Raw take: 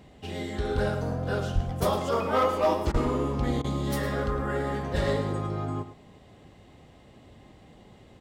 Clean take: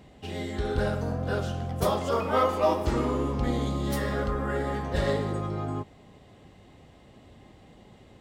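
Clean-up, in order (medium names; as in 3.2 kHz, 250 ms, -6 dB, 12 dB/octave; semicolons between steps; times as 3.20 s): clip repair -16.5 dBFS; 1.54–1.66 s: high-pass 140 Hz 24 dB/octave; 2.92–3.04 s: high-pass 140 Hz 24 dB/octave; interpolate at 2.92/3.62 s, 21 ms; inverse comb 108 ms -13 dB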